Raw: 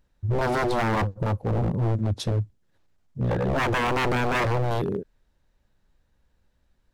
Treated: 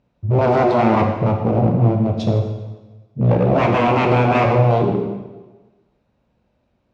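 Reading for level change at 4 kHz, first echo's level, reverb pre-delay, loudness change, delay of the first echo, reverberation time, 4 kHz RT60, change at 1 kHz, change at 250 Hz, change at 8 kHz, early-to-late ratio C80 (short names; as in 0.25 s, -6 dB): +1.0 dB, none, 8 ms, +8.5 dB, none, 1.2 s, 1.1 s, +8.5 dB, +10.5 dB, n/a, 7.0 dB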